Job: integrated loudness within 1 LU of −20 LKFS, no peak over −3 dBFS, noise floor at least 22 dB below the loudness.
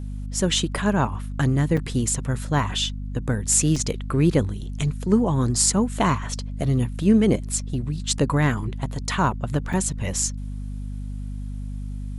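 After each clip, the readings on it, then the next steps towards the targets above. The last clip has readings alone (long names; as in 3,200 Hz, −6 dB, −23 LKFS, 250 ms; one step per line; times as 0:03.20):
number of dropouts 3; longest dropout 4.7 ms; mains hum 50 Hz; hum harmonics up to 250 Hz; level of the hum −28 dBFS; integrated loudness −23.0 LKFS; sample peak −4.0 dBFS; target loudness −20.0 LKFS
→ repair the gap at 0:01.77/0:03.76/0:09.73, 4.7 ms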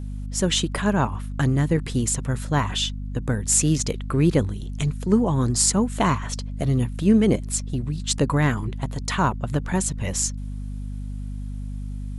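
number of dropouts 0; mains hum 50 Hz; hum harmonics up to 250 Hz; level of the hum −28 dBFS
→ hum removal 50 Hz, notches 5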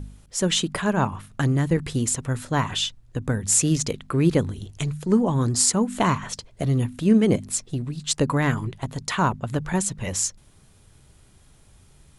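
mains hum none found; integrated loudness −23.5 LKFS; sample peak −4.5 dBFS; target loudness −20.0 LKFS
→ level +3.5 dB
brickwall limiter −3 dBFS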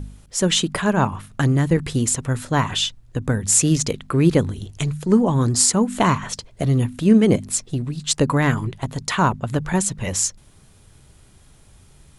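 integrated loudness −20.0 LKFS; sample peak −3.0 dBFS; background noise floor −51 dBFS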